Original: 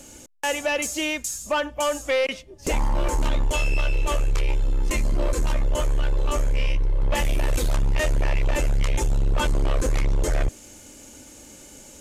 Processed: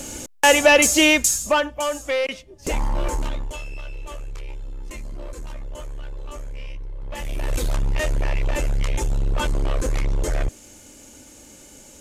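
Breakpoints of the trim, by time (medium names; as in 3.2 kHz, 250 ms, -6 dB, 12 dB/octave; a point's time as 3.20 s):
1.26 s +11 dB
1.80 s -0.5 dB
3.11 s -0.5 dB
3.66 s -11.5 dB
7.05 s -11.5 dB
7.55 s -0.5 dB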